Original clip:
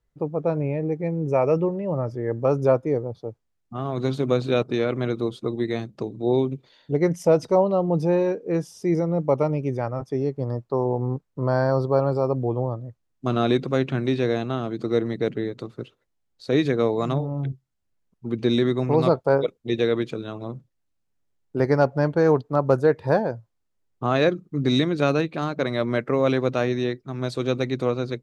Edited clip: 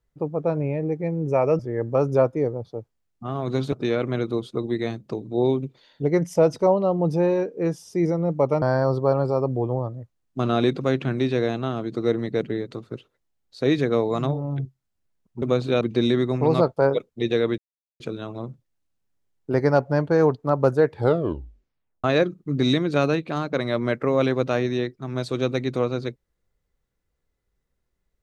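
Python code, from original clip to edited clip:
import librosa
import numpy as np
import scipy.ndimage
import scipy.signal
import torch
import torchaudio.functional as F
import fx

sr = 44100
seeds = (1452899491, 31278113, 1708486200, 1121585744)

y = fx.edit(x, sr, fx.cut(start_s=1.59, length_s=0.5),
    fx.move(start_s=4.22, length_s=0.39, to_s=18.29),
    fx.cut(start_s=9.51, length_s=1.98),
    fx.insert_silence(at_s=20.06, length_s=0.42),
    fx.tape_stop(start_s=22.97, length_s=1.13), tone=tone)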